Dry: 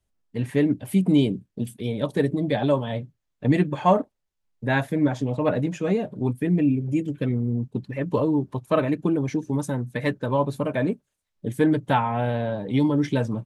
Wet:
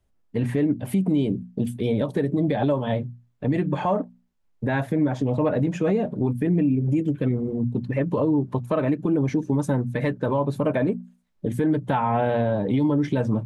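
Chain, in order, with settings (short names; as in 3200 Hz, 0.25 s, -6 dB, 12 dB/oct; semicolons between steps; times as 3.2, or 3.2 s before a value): high shelf 2300 Hz -9 dB; notches 60/120/180/240 Hz; compressor, threshold -24 dBFS, peak gain reduction 10 dB; limiter -21 dBFS, peak gain reduction 6.5 dB; gain +7.5 dB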